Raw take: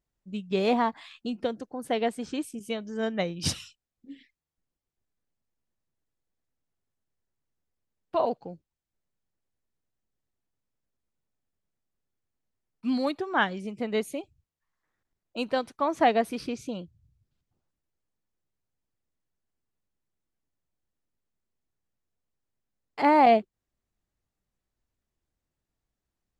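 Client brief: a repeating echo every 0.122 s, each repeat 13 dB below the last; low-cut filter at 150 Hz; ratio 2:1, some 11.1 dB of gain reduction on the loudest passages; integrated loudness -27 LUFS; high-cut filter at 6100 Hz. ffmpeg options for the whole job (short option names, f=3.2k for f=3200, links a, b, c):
-af "highpass=150,lowpass=6.1k,acompressor=threshold=-36dB:ratio=2,aecho=1:1:122|244|366:0.224|0.0493|0.0108,volume=9dB"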